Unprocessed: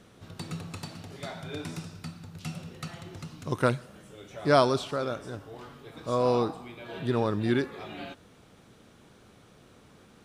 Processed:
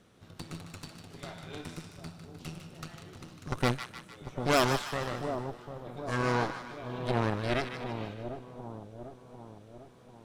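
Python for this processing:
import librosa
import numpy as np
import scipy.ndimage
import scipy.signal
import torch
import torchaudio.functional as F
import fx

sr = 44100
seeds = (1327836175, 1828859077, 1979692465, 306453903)

y = fx.cheby_harmonics(x, sr, harmonics=(8,), levels_db=(-10,), full_scale_db=-7.5)
y = fx.echo_split(y, sr, split_hz=1000.0, low_ms=747, high_ms=152, feedback_pct=52, wet_db=-8)
y = y * librosa.db_to_amplitude(-6.5)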